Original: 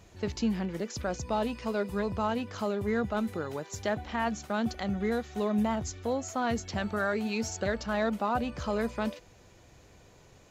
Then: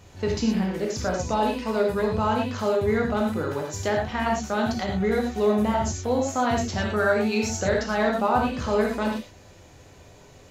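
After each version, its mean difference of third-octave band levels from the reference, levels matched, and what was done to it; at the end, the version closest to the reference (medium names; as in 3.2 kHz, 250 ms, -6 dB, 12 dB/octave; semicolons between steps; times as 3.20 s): 4.0 dB: gated-style reverb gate 140 ms flat, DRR -1 dB; trim +3.5 dB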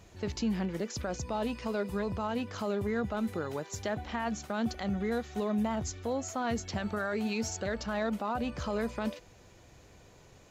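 1.5 dB: peak limiter -23.5 dBFS, peak gain reduction 6 dB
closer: second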